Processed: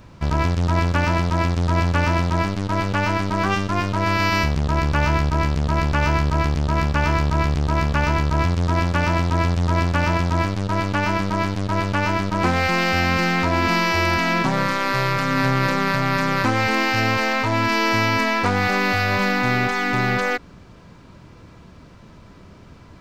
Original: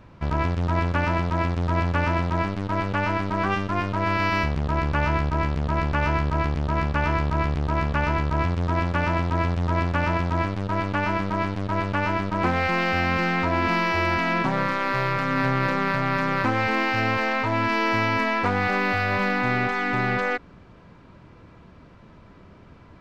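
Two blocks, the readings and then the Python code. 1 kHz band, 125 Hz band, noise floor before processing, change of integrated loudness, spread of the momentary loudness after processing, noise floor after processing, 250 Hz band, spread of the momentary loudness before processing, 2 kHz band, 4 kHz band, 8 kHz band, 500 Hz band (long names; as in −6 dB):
+2.5 dB, +4.5 dB, −49 dBFS, +3.5 dB, 3 LU, −45 dBFS, +3.5 dB, 3 LU, +3.5 dB, +7.5 dB, can't be measured, +2.5 dB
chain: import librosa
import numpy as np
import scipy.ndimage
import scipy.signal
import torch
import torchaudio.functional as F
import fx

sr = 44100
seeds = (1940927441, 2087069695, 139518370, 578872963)

y = fx.bass_treble(x, sr, bass_db=2, treble_db=12)
y = y * librosa.db_to_amplitude(2.5)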